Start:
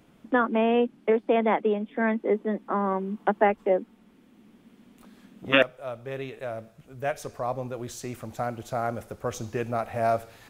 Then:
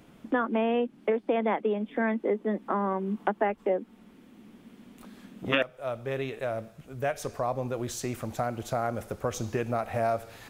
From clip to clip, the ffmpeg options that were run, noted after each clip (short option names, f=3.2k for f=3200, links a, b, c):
-af "acompressor=threshold=-30dB:ratio=2.5,volume=3.5dB"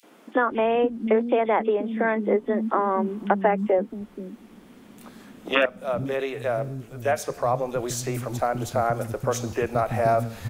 -filter_complex "[0:a]acrossover=split=260|2900[a][b][c];[b]adelay=30[d];[a]adelay=510[e];[e][d][c]amix=inputs=3:normalize=0,volume=6.5dB"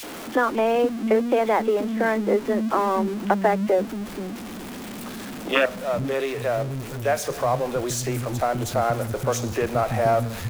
-af "aeval=exprs='val(0)+0.5*0.0282*sgn(val(0))':c=same"